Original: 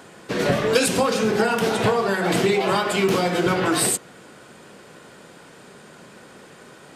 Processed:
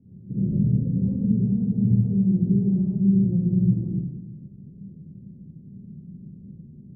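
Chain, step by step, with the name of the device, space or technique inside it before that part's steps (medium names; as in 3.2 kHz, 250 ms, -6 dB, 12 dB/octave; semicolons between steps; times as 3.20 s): club heard from the street (peak limiter -15.5 dBFS, peak gain reduction 8.5 dB; low-pass 190 Hz 24 dB/octave; reverberation RT60 1.0 s, pre-delay 44 ms, DRR -7.5 dB); trim +2.5 dB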